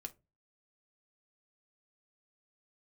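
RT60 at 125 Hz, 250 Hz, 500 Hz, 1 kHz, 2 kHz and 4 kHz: 0.45 s, 0.35 s, 0.30 s, 0.20 s, 0.20 s, 0.15 s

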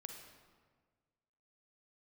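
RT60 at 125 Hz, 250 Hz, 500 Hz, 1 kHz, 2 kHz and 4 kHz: 1.9 s, 1.7 s, 1.6 s, 1.5 s, 1.3 s, 1.0 s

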